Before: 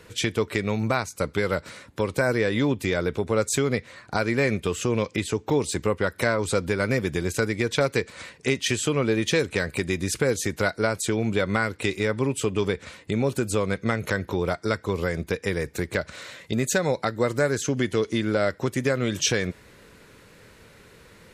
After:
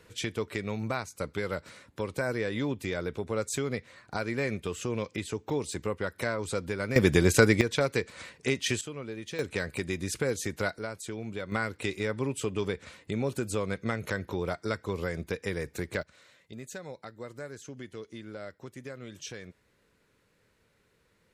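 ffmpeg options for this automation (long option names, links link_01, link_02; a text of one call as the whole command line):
ffmpeg -i in.wav -af "asetnsamples=nb_out_samples=441:pad=0,asendcmd='6.96 volume volume 4.5dB;7.61 volume volume -4.5dB;8.81 volume volume -16dB;9.39 volume volume -6.5dB;10.79 volume volume -13dB;11.52 volume volume -6.5dB;16.03 volume volume -18.5dB',volume=-8dB" out.wav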